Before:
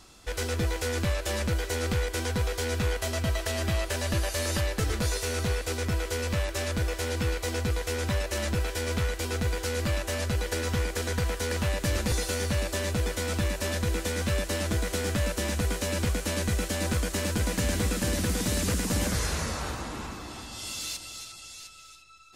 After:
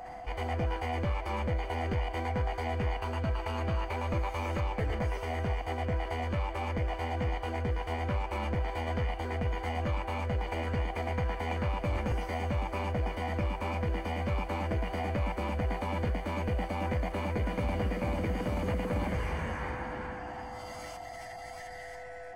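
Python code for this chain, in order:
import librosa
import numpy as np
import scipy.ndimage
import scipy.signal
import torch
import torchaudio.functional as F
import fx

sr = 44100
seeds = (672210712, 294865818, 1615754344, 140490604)

y = x + 10.0 ** (-38.0 / 20.0) * np.sin(2.0 * np.pi * 500.0 * np.arange(len(x)) / sr)
y = fx.leveller(y, sr, passes=1)
y = scipy.signal.savgol_filter(y, 41, 4, mode='constant')
y = fx.formant_shift(y, sr, semitones=6)
y = y * 10.0 ** (-6.0 / 20.0)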